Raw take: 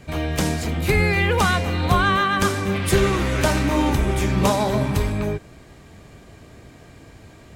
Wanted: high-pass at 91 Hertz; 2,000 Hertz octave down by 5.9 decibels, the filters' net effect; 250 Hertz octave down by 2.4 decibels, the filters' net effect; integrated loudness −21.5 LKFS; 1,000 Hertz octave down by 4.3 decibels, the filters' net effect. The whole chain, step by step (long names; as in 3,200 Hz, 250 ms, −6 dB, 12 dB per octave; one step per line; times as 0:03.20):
high-pass filter 91 Hz
parametric band 250 Hz −3 dB
parametric band 1,000 Hz −3.5 dB
parametric band 2,000 Hz −6.5 dB
level +2 dB